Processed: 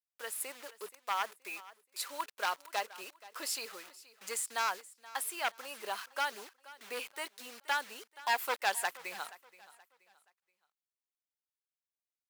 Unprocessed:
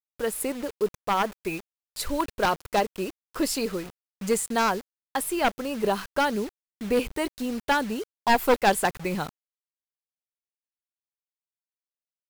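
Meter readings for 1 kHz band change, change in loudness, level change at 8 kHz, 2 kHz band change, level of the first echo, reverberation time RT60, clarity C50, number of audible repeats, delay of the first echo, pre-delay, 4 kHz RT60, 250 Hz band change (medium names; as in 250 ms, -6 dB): -10.0 dB, -10.0 dB, -6.0 dB, -6.5 dB, -19.0 dB, no reverb, no reverb, 2, 476 ms, no reverb, no reverb, -28.5 dB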